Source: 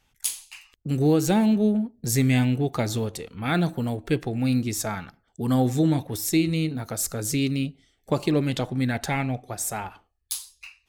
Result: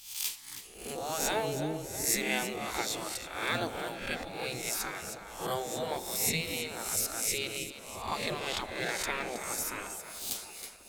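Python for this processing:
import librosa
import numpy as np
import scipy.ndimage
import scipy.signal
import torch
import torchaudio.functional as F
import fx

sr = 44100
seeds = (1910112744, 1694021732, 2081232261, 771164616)

y = fx.spec_swells(x, sr, rise_s=0.64)
y = fx.echo_split(y, sr, split_hz=440.0, low_ms=572, high_ms=320, feedback_pct=52, wet_db=-12)
y = fx.spec_gate(y, sr, threshold_db=-10, keep='weak')
y = y * 10.0 ** (-3.5 / 20.0)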